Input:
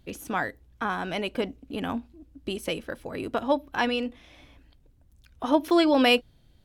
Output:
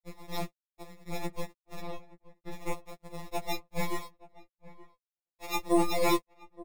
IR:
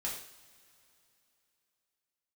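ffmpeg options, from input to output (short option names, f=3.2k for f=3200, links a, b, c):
-filter_complex "[0:a]asettb=1/sr,asplit=3[a][b][c];[a]atrim=end=0.444[d];[b]atrim=start=0.44:end=1.08,asetpts=PTS-STARTPTS,afade=t=in:d=0.004:c=qsin,afade=t=out:st=0.636:d=0.004:c=qsin,acompressor=threshold=-41dB:ratio=4[e];[c]atrim=start=1.076[f];[d][e]acrossfade=d=0.004:c1=hsin:c2=qsin[g];[g][f]acrossfade=d=0.004:c1=qsin:c2=hsin,tiltshelf=f=700:g=-6,acrusher=samples=29:mix=1:aa=0.000001,asoftclip=type=tanh:threshold=-16dB,aeval=exprs='0.158*(cos(1*acos(clip(val(0)/0.158,-1,1)))-cos(1*PI/2))+0.0398*(cos(3*acos(clip(val(0)/0.158,-1,1)))-cos(3*PI/2))+0.00158*(cos(5*acos(clip(val(0)/0.158,-1,1)))-cos(5*PI/2))+0.001*(cos(7*acos(clip(val(0)/0.158,-1,1)))-cos(7*PI/2))+0.0178*(cos(8*acos(clip(val(0)/0.158,-1,1)))-cos(8*PI/2))':c=same,aeval=exprs='sgn(val(0))*max(abs(val(0))-0.00282,0)':c=same,asettb=1/sr,asplit=3[h][i][j];[h]atrim=end=1.814[k];[i]atrim=start=1.81:end=2.53,asetpts=PTS-STARTPTS,afade=t=in:d=0.004:c=qsin,afade=t=out:st=0.716:d=0.004:c=qsin,acrossover=split=3800[l][m];[m]acompressor=threshold=-55dB:ratio=4:attack=1:release=60[n];[l][n]amix=inputs=2:normalize=0[o];[j]atrim=start=2.526[p];[k][o]acrossfade=d=0.004:c1=hsin:c2=qsin[q];[q][p]acrossfade=d=0.004:c1=qsin:c2=hsin,asettb=1/sr,asplit=3[r][s][t];[r]atrim=end=3.994[u];[s]atrim=start=3.99:end=5.56,asetpts=PTS-STARTPTS,afade=t=in:d=0.004:c=qsin,afade=t=out:st=1.566:d=0.004:c=qsin,lowshelf=f=360:g=-11.5[v];[t]atrim=start=5.556[w];[u][v]acrossfade=d=0.004:c1=hsin:c2=qsin[x];[x][w]acrossfade=d=0.004:c1=qsin:c2=hsin,asplit=2[y][z];[z]adelay=874.6,volume=-19dB,highshelf=f=4k:g=-19.7[aa];[y][aa]amix=inputs=2:normalize=0,afftfilt=real='re*2.83*eq(mod(b,8),0)':imag='im*2.83*eq(mod(b,8),0)':win_size=2048:overlap=0.75"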